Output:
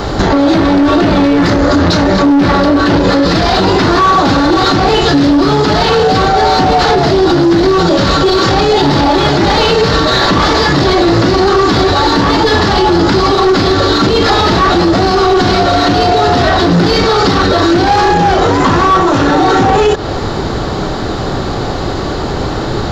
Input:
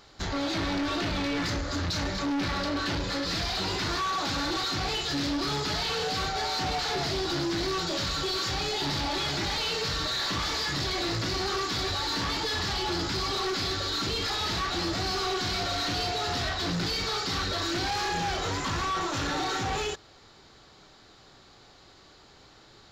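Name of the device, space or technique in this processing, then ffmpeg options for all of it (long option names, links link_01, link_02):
mastering chain: -filter_complex "[0:a]equalizer=frequency=2300:width_type=o:width=0.26:gain=-3,acrossover=split=190|6900[link_01][link_02][link_03];[link_01]acompressor=threshold=-49dB:ratio=4[link_04];[link_02]acompressor=threshold=-31dB:ratio=4[link_05];[link_03]acompressor=threshold=-59dB:ratio=4[link_06];[link_04][link_05][link_06]amix=inputs=3:normalize=0,acompressor=threshold=-39dB:ratio=2.5,tiltshelf=frequency=1400:gain=8,asoftclip=type=hard:threshold=-26.5dB,alimiter=level_in=35.5dB:limit=-1dB:release=50:level=0:latency=1,volume=-1dB"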